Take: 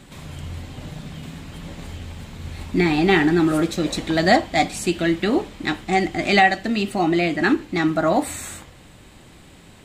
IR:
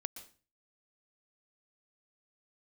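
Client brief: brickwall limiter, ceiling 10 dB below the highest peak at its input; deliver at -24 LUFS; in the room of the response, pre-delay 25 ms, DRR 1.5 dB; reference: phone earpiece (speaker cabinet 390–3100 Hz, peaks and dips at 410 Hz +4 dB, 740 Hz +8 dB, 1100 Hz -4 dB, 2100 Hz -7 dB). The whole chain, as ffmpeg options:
-filter_complex "[0:a]alimiter=limit=-13dB:level=0:latency=1,asplit=2[a][b];[1:a]atrim=start_sample=2205,adelay=25[c];[b][c]afir=irnorm=-1:irlink=0,volume=0.5dB[d];[a][d]amix=inputs=2:normalize=0,highpass=390,equalizer=f=410:t=q:w=4:g=4,equalizer=f=740:t=q:w=4:g=8,equalizer=f=1.1k:t=q:w=4:g=-4,equalizer=f=2.1k:t=q:w=4:g=-7,lowpass=f=3.1k:w=0.5412,lowpass=f=3.1k:w=1.3066,volume=-3dB"

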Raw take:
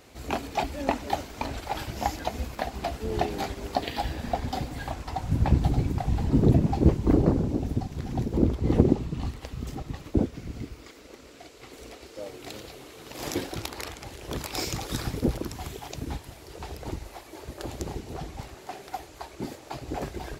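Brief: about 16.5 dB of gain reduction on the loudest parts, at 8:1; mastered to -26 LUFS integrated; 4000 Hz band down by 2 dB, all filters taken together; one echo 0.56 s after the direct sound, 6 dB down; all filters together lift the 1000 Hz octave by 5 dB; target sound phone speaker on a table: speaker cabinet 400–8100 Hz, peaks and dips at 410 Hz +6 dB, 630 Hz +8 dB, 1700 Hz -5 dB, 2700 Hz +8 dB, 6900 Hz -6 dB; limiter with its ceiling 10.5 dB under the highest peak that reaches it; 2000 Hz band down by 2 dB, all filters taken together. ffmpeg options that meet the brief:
-af "equalizer=f=1k:t=o:g=4.5,equalizer=f=2k:t=o:g=-4.5,equalizer=f=4k:t=o:g=-3.5,acompressor=threshold=-32dB:ratio=8,alimiter=level_in=4.5dB:limit=-24dB:level=0:latency=1,volume=-4.5dB,highpass=f=400:w=0.5412,highpass=f=400:w=1.3066,equalizer=f=410:t=q:w=4:g=6,equalizer=f=630:t=q:w=4:g=8,equalizer=f=1.7k:t=q:w=4:g=-5,equalizer=f=2.7k:t=q:w=4:g=8,equalizer=f=6.9k:t=q:w=4:g=-6,lowpass=f=8.1k:w=0.5412,lowpass=f=8.1k:w=1.3066,aecho=1:1:560:0.501,volume=14.5dB"

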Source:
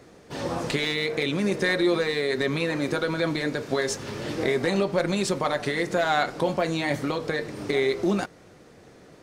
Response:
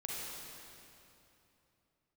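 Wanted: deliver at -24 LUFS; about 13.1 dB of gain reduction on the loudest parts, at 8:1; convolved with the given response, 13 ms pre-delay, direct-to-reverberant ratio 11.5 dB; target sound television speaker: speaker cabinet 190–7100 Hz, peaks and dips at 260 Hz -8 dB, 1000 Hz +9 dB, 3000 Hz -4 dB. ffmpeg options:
-filter_complex "[0:a]acompressor=threshold=-33dB:ratio=8,asplit=2[a][b];[1:a]atrim=start_sample=2205,adelay=13[c];[b][c]afir=irnorm=-1:irlink=0,volume=-13dB[d];[a][d]amix=inputs=2:normalize=0,highpass=f=190:w=0.5412,highpass=f=190:w=1.3066,equalizer=f=260:t=q:w=4:g=-8,equalizer=f=1k:t=q:w=4:g=9,equalizer=f=3k:t=q:w=4:g=-4,lowpass=f=7.1k:w=0.5412,lowpass=f=7.1k:w=1.3066,volume=13dB"

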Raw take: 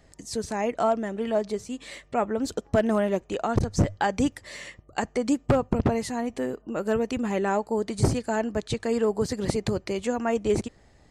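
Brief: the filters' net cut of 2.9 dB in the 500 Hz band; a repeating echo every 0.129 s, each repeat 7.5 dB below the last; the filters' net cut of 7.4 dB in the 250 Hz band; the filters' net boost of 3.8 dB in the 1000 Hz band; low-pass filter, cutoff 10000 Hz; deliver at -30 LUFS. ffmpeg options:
-af "lowpass=10k,equalizer=f=250:t=o:g=-8.5,equalizer=f=500:t=o:g=-4,equalizer=f=1k:t=o:g=7.5,aecho=1:1:129|258|387|516|645:0.422|0.177|0.0744|0.0312|0.0131,volume=-2dB"

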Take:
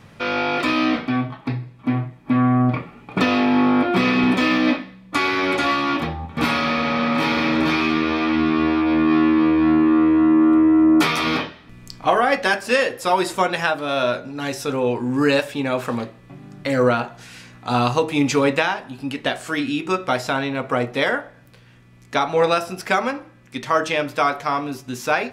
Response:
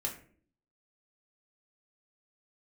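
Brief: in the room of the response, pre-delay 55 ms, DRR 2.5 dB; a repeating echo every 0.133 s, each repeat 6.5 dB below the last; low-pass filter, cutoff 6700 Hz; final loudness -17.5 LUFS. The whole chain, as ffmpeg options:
-filter_complex "[0:a]lowpass=6.7k,aecho=1:1:133|266|399|532|665|798:0.473|0.222|0.105|0.0491|0.0231|0.0109,asplit=2[a][b];[1:a]atrim=start_sample=2205,adelay=55[c];[b][c]afir=irnorm=-1:irlink=0,volume=-4.5dB[d];[a][d]amix=inputs=2:normalize=0,volume=-2dB"

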